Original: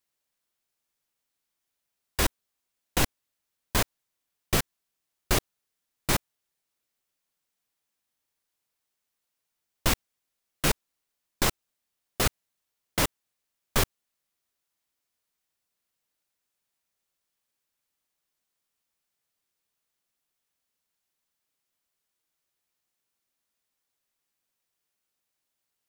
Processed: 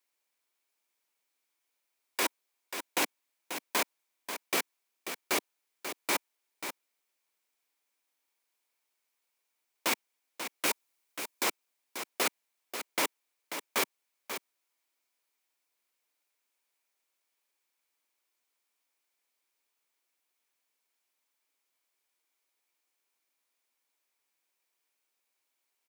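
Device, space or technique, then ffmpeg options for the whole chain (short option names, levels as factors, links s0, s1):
laptop speaker: -filter_complex "[0:a]asettb=1/sr,asplit=3[s0][s1][s2];[s0]atrim=end=10.664[s3];[s1]atrim=start=10.66:end=11.44,asetpts=PTS-STARTPTS,afade=t=in:d=0.004:c=qsin,afade=t=out:st=0.776:d=0.004:c=qsin,highshelf=f=5200:g=5[s4];[s2]atrim=start=11.436[s5];[s3][s4]acrossfade=d=0.004:c1=hsin:c2=qsin[s6];[s6][s5]acrossfade=d=0.004:c1=qsin:c2=hsin,highpass=f=270:w=0.5412,highpass=f=270:w=1.3066,equalizer=f=950:t=o:w=0.27:g=4,equalizer=f=2300:t=o:w=0.24:g=7,alimiter=limit=0.126:level=0:latency=1:release=16,aecho=1:1:538:0.355"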